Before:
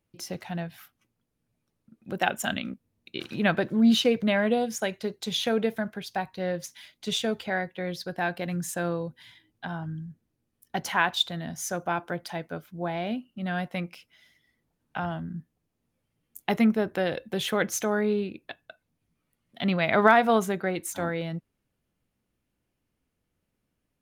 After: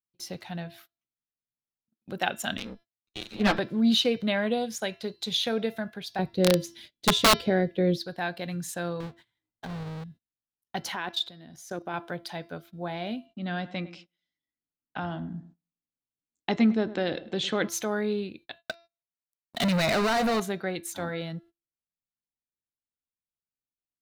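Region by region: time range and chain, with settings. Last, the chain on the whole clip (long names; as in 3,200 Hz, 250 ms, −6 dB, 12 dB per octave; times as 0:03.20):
0:02.57–0:03.59: lower of the sound and its delayed copy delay 9.4 ms + hard clipping −19 dBFS + multiband upward and downward expander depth 70%
0:06.19–0:07.98: low shelf with overshoot 630 Hz +11.5 dB, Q 1.5 + wrap-around overflow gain 10 dB
0:09.00–0:10.04: each half-wave held at its own peak + low-pass filter 1,600 Hz 6 dB per octave + downward compressor 3 to 1, threshold −32 dBFS
0:10.95–0:11.94: parametric band 340 Hz +7.5 dB 0.81 octaves + output level in coarse steps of 15 dB
0:13.26–0:17.68: Butterworth low-pass 8,200 Hz 72 dB per octave + parametric band 290 Hz +8.5 dB 0.52 octaves + feedback echo with a low-pass in the loop 104 ms, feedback 37%, low-pass 1,700 Hz, level −15.5 dB
0:18.58–0:20.40: downward compressor, threshold −27 dBFS + leveller curve on the samples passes 5 + notch filter 3,300 Hz, Q 7.1
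whole clip: hum removal 338.5 Hz, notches 17; noise gate −47 dBFS, range −25 dB; parametric band 4,000 Hz +7.5 dB 0.57 octaves; level −3 dB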